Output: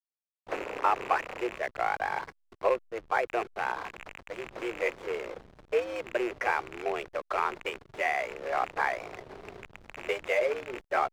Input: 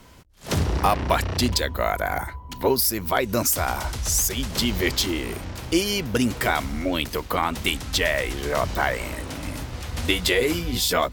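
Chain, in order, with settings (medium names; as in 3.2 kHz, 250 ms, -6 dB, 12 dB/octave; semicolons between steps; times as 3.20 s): rattle on loud lows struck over -26 dBFS, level -17 dBFS; mistuned SSB +120 Hz 260–2300 Hz; hysteresis with a dead band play -29.5 dBFS; trim -4.5 dB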